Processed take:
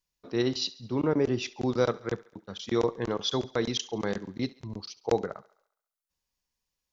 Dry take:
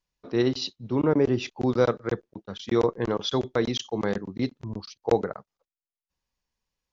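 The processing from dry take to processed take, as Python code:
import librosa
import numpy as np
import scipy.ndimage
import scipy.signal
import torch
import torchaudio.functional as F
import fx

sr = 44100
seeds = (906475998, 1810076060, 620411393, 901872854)

y = fx.high_shelf(x, sr, hz=4100.0, db=9.0)
y = fx.echo_thinned(y, sr, ms=69, feedback_pct=57, hz=370.0, wet_db=-19.5)
y = y * librosa.db_to_amplitude(-4.0)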